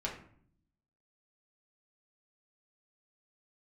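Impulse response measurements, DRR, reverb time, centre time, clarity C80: −3.5 dB, 0.60 s, 25 ms, 11.0 dB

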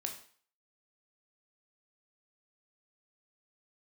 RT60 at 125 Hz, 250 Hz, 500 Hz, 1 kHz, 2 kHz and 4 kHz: 0.40, 0.40, 0.45, 0.50, 0.50, 0.45 seconds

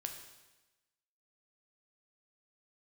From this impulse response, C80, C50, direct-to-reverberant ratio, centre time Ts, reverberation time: 9.0 dB, 7.0 dB, 4.0 dB, 26 ms, 1.1 s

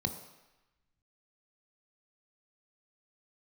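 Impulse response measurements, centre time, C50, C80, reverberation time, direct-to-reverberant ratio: 17 ms, 9.0 dB, 11.0 dB, 1.0 s, 6.0 dB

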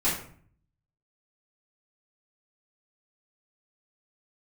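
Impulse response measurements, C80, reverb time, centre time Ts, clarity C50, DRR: 9.0 dB, 0.50 s, 37 ms, 5.0 dB, −9.0 dB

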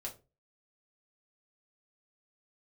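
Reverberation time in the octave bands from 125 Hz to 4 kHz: 0.40, 0.35, 0.35, 0.25, 0.20, 0.20 seconds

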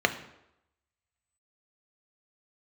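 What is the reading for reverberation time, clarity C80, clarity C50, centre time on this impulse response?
0.85 s, 15.0 dB, 12.5 dB, 8 ms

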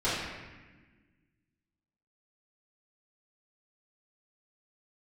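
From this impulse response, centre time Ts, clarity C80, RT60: 89 ms, 2.0 dB, 1.3 s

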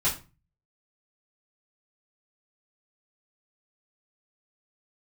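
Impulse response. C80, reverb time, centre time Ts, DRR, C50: 16.0 dB, 0.30 s, 22 ms, −9.0 dB, 9.5 dB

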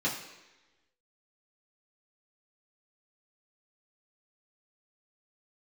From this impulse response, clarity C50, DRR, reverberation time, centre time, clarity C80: 6.5 dB, −6.5 dB, 1.1 s, 34 ms, 9.0 dB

